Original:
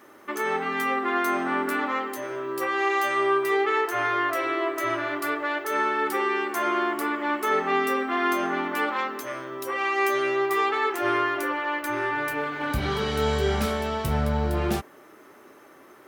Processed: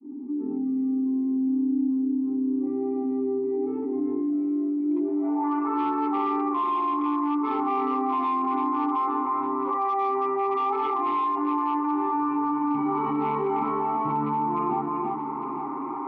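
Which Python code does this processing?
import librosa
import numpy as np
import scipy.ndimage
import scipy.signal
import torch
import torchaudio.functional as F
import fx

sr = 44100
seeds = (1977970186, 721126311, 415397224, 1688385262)

y = fx.fade_in_head(x, sr, length_s=1.04)
y = y + 10.0 ** (-7.5 / 20.0) * np.pad(y, (int(335 * sr / 1000.0), 0))[:len(y)]
y = fx.filter_sweep_lowpass(y, sr, from_hz=250.0, to_hz=1100.0, start_s=4.81, end_s=5.52, q=5.1)
y = np.clip(y, -10.0 ** (-13.0 / 20.0), 10.0 ** (-13.0 / 20.0))
y = fx.vowel_filter(y, sr, vowel='u')
y = y + 0.96 * np.pad(y, (int(7.5 * sr / 1000.0), 0))[:len(y)]
y = y + 10.0 ** (-22.0 / 20.0) * np.pad(y, (int(856 * sr / 1000.0), 0))[:len(y)]
y = fx.rider(y, sr, range_db=4, speed_s=0.5)
y = scipy.signal.sosfilt(scipy.signal.ellip(3, 1.0, 40, [140.0, 5200.0], 'bandpass', fs=sr, output='sos'), y)
y = fx.env_flatten(y, sr, amount_pct=70)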